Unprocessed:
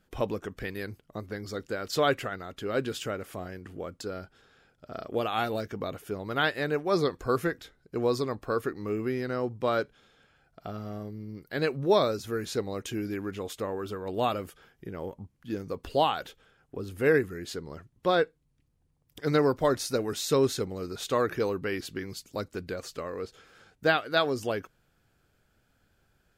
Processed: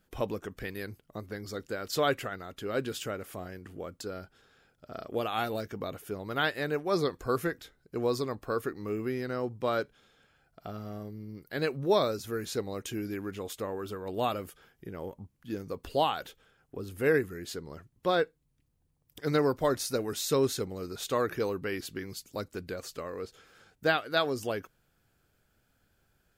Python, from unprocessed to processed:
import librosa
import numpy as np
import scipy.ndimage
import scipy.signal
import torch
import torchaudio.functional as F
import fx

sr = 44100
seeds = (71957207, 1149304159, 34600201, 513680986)

y = fx.high_shelf(x, sr, hz=10000.0, db=8.0)
y = y * 10.0 ** (-2.5 / 20.0)